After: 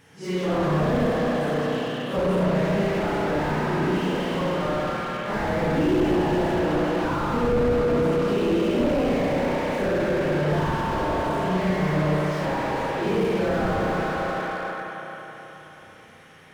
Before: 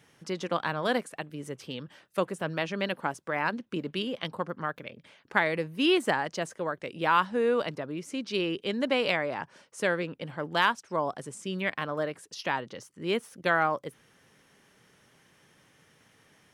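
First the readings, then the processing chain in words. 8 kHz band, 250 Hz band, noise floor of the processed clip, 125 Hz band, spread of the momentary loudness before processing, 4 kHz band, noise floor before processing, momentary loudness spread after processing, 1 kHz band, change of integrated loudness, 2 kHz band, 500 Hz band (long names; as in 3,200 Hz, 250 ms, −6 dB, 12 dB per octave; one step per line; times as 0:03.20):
+2.0 dB, +10.0 dB, −47 dBFS, +14.0 dB, 13 LU, −1.0 dB, −63 dBFS, 6 LU, +4.5 dB, +6.5 dB, +1.0 dB, +8.0 dB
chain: random phases in long frames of 200 ms
spring reverb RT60 3.7 s, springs 33/53 ms, chirp 25 ms, DRR −6.5 dB
slew-rate limiting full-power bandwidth 28 Hz
level +5 dB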